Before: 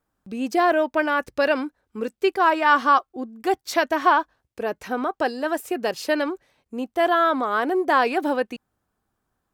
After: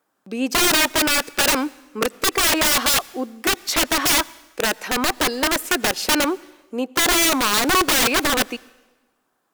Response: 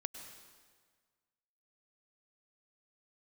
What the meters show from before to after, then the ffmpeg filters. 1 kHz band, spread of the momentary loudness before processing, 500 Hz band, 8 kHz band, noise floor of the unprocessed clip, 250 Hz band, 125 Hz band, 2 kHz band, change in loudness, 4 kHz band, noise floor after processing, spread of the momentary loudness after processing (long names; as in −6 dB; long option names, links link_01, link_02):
−2.5 dB, 13 LU, −2.5 dB, +23.0 dB, −78 dBFS, +2.0 dB, can't be measured, +4.0 dB, +4.0 dB, +15.0 dB, −71 dBFS, 11 LU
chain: -filter_complex "[0:a]highpass=300,aeval=exprs='(mod(10*val(0)+1,2)-1)/10':channel_layout=same,asplit=2[link_01][link_02];[1:a]atrim=start_sample=2205,asetrate=57330,aresample=44100[link_03];[link_02][link_03]afir=irnorm=-1:irlink=0,volume=-11.5dB[link_04];[link_01][link_04]amix=inputs=2:normalize=0,volume=6.5dB"